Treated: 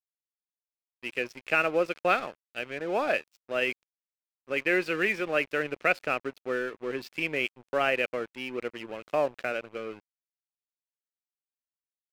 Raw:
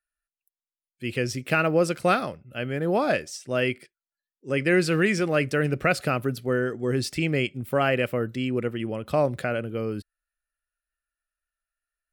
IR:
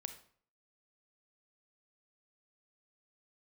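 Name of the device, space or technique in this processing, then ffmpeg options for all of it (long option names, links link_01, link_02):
pocket radio on a weak battery: -af "highpass=380,lowpass=3600,aeval=exprs='sgn(val(0))*max(abs(val(0))-0.00944,0)':channel_layout=same,equalizer=frequency=2500:width_type=o:width=0.4:gain=6,volume=-2dB"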